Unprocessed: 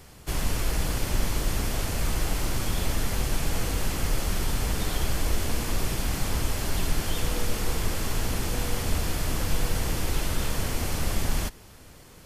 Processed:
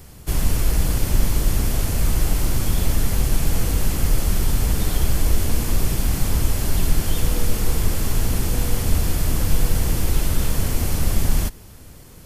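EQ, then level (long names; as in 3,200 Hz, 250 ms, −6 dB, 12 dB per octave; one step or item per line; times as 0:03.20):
low-shelf EQ 340 Hz +8.5 dB
high-shelf EQ 8,300 Hz +10 dB
0.0 dB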